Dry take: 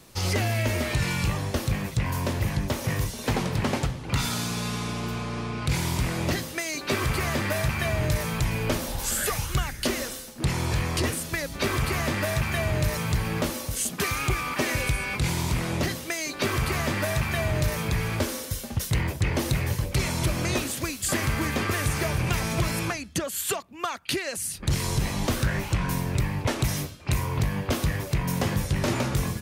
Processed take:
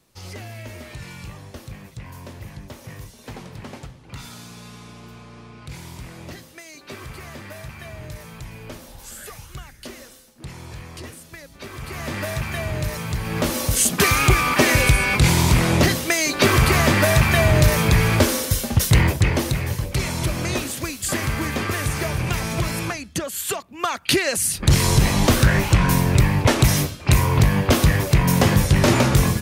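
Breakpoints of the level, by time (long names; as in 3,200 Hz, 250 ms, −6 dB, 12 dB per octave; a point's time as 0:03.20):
0:11.70 −11 dB
0:12.16 −0.5 dB
0:13.20 −0.5 dB
0:13.65 +10 dB
0:19.06 +10 dB
0:19.55 +2 dB
0:23.53 +2 dB
0:24.14 +9.5 dB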